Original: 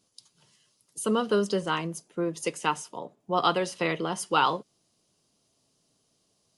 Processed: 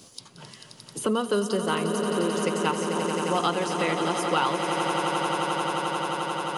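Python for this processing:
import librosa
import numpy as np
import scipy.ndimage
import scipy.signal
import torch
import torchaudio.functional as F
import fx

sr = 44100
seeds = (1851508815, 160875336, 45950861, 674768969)

y = fx.echo_swell(x, sr, ms=88, loudest=8, wet_db=-11)
y = fx.band_squash(y, sr, depth_pct=70)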